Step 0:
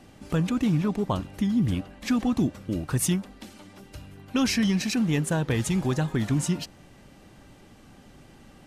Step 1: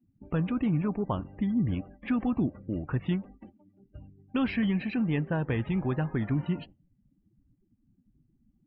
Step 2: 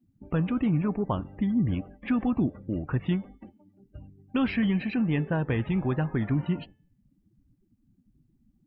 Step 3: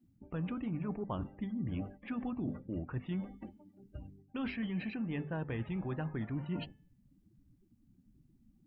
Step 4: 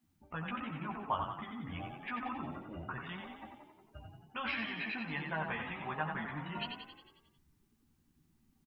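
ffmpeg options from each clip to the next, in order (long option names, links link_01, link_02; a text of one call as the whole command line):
ffmpeg -i in.wav -af "lowpass=frequency=2900:width=0.5412,lowpass=frequency=2900:width=1.3066,agate=range=-6dB:threshold=-44dB:ratio=16:detection=peak,afftdn=noise_reduction=33:noise_floor=-45,volume=-3.5dB" out.wav
ffmpeg -i in.wav -af "bandreject=frequency=435:width_type=h:width=4,bandreject=frequency=870:width_type=h:width=4,bandreject=frequency=1305:width_type=h:width=4,bandreject=frequency=1740:width_type=h:width=4,bandreject=frequency=2175:width_type=h:width=4,bandreject=frequency=2610:width_type=h:width=4,bandreject=frequency=3045:width_type=h:width=4,bandreject=frequency=3480:width_type=h:width=4,volume=2dB" out.wav
ffmpeg -i in.wav -af "bandreject=frequency=50:width_type=h:width=6,bandreject=frequency=100:width_type=h:width=6,bandreject=frequency=150:width_type=h:width=6,bandreject=frequency=200:width_type=h:width=6,bandreject=frequency=250:width_type=h:width=6,areverse,acompressor=threshold=-35dB:ratio=6,areverse" out.wav
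ffmpeg -i in.wav -filter_complex "[0:a]lowshelf=frequency=590:width_type=q:width=1.5:gain=-13,asplit=2[link_01][link_02];[link_02]adelay=13,volume=-3dB[link_03];[link_01][link_03]amix=inputs=2:normalize=0,asplit=2[link_04][link_05];[link_05]asplit=8[link_06][link_07][link_08][link_09][link_10][link_11][link_12][link_13];[link_06]adelay=90,afreqshift=31,volume=-5.5dB[link_14];[link_07]adelay=180,afreqshift=62,volume=-10.2dB[link_15];[link_08]adelay=270,afreqshift=93,volume=-15dB[link_16];[link_09]adelay=360,afreqshift=124,volume=-19.7dB[link_17];[link_10]adelay=450,afreqshift=155,volume=-24.4dB[link_18];[link_11]adelay=540,afreqshift=186,volume=-29.2dB[link_19];[link_12]adelay=630,afreqshift=217,volume=-33.9dB[link_20];[link_13]adelay=720,afreqshift=248,volume=-38.6dB[link_21];[link_14][link_15][link_16][link_17][link_18][link_19][link_20][link_21]amix=inputs=8:normalize=0[link_22];[link_04][link_22]amix=inputs=2:normalize=0,volume=4.5dB" out.wav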